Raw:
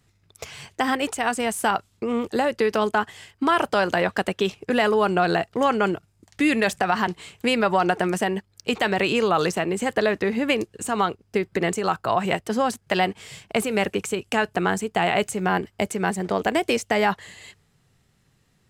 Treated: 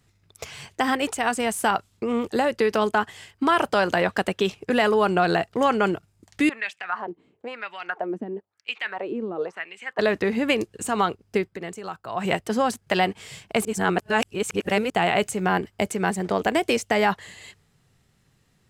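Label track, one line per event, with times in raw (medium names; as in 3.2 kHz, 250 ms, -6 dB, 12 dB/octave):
6.490000	9.990000	wah-wah 1 Hz 260–2700 Hz, Q 3
11.400000	12.260000	dip -11 dB, fades 0.13 s
13.650000	14.900000	reverse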